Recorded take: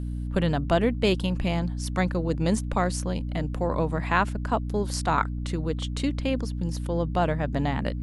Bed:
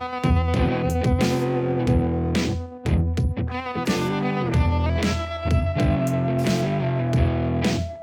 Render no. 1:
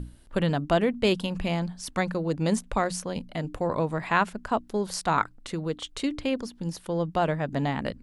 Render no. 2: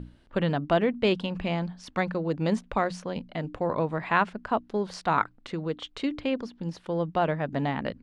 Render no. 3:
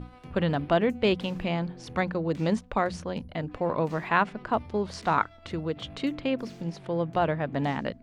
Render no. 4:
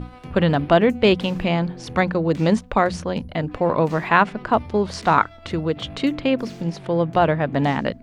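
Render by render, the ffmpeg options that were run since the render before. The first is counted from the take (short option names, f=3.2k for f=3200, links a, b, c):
-af "bandreject=f=60:t=h:w=6,bandreject=f=120:t=h:w=6,bandreject=f=180:t=h:w=6,bandreject=f=240:t=h:w=6,bandreject=f=300:t=h:w=6"
-af "lowpass=3.7k,lowshelf=f=72:g=-9.5"
-filter_complex "[1:a]volume=-24.5dB[a];[0:a][a]amix=inputs=2:normalize=0"
-af "volume=8dB,alimiter=limit=-1dB:level=0:latency=1"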